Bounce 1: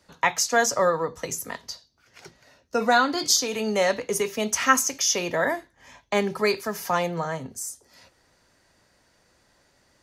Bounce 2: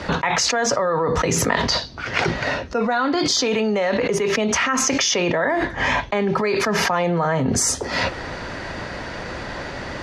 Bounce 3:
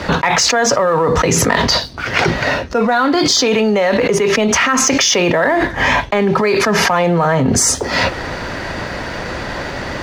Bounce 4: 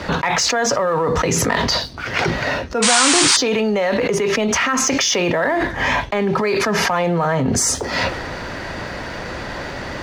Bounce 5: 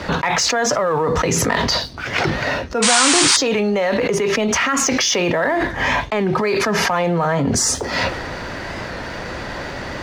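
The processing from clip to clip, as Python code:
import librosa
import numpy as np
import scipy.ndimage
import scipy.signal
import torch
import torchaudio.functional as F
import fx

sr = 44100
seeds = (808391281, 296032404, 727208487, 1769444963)

y1 = scipy.signal.sosfilt(scipy.signal.butter(2, 3000.0, 'lowpass', fs=sr, output='sos'), x)
y1 = fx.env_flatten(y1, sr, amount_pct=100)
y1 = F.gain(torch.from_numpy(y1), -6.0).numpy()
y2 = fx.leveller(y1, sr, passes=1)
y2 = F.gain(torch.from_numpy(y2), 3.0).numpy()
y3 = fx.transient(y2, sr, attack_db=-1, sustain_db=3)
y3 = fx.spec_paint(y3, sr, seeds[0], shape='noise', start_s=2.82, length_s=0.55, low_hz=810.0, high_hz=9500.0, level_db=-11.0)
y3 = F.gain(torch.from_numpy(y3), -4.5).numpy()
y4 = fx.record_warp(y3, sr, rpm=45.0, depth_cents=100.0)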